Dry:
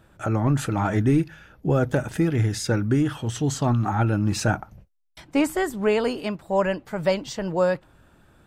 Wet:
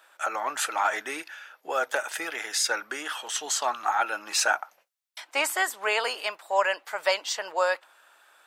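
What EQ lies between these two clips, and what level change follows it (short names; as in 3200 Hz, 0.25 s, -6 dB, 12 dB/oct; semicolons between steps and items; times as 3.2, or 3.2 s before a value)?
Bessel high-pass 1000 Hz, order 4; +6.0 dB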